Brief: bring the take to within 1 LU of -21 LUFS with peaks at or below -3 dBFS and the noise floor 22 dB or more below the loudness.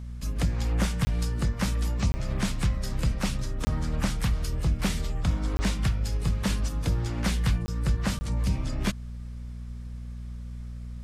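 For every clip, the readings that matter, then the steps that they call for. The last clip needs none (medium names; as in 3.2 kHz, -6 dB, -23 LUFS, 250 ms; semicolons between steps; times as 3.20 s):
dropouts 6; longest dropout 20 ms; hum 60 Hz; highest harmonic 240 Hz; hum level -34 dBFS; loudness -29.0 LUFS; peak level -13.5 dBFS; loudness target -21.0 LUFS
-> interpolate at 1.05/2.12/3.65/5.57/7.66/8.19 s, 20 ms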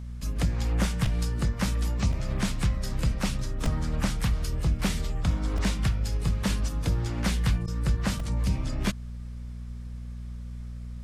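dropouts 0; hum 60 Hz; highest harmonic 240 Hz; hum level -34 dBFS
-> de-hum 60 Hz, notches 4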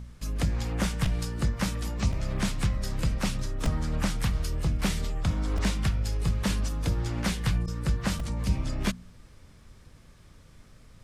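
hum not found; loudness -30.0 LUFS; peak level -14.0 dBFS; loudness target -21.0 LUFS
-> trim +9 dB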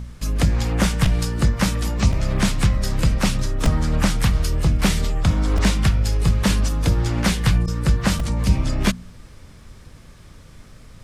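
loudness -21.0 LUFS; peak level -5.0 dBFS; noise floor -44 dBFS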